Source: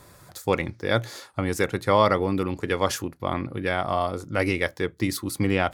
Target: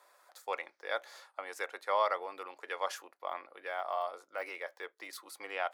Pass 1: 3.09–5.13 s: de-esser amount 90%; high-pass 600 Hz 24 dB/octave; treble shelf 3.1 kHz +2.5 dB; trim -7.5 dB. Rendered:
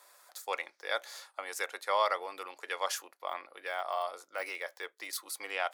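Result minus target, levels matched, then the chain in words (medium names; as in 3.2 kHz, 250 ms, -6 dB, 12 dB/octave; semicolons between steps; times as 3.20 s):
8 kHz band +8.0 dB
3.09–5.13 s: de-esser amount 90%; high-pass 600 Hz 24 dB/octave; treble shelf 3.1 kHz -9 dB; trim -7.5 dB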